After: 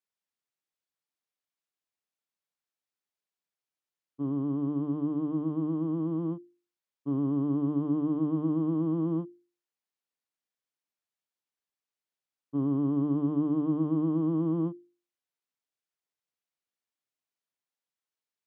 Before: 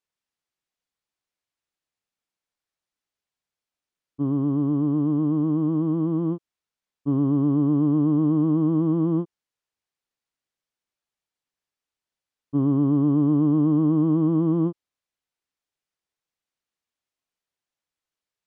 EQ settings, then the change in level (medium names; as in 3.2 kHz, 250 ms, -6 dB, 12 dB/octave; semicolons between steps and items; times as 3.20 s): high-pass 130 Hz; hum notches 50/100/150/200/250/300/350 Hz; -6.0 dB